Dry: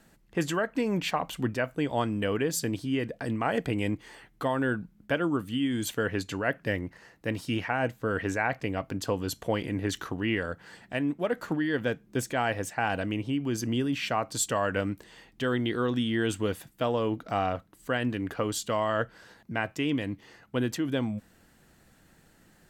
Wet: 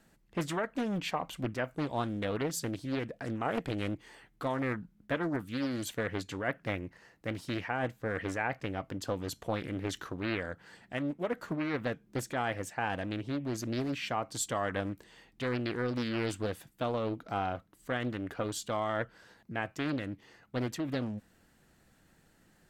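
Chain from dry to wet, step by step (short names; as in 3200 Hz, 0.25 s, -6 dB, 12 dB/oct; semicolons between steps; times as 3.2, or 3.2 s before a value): Doppler distortion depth 0.58 ms; gain -5 dB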